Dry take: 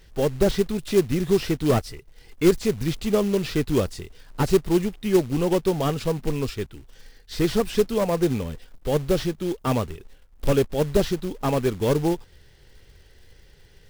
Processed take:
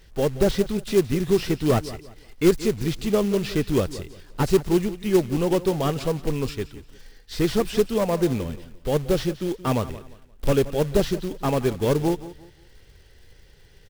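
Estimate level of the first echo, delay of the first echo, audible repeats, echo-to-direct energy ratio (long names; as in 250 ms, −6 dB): −16.0 dB, 175 ms, 2, −15.5 dB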